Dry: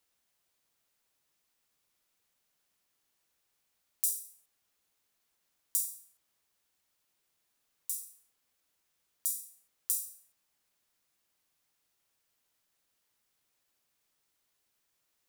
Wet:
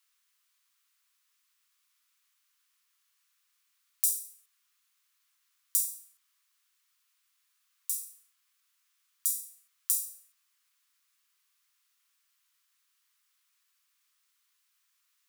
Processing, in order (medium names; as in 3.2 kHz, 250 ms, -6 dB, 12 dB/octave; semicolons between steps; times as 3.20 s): Chebyshev high-pass 1.1 kHz, order 4; trim +4.5 dB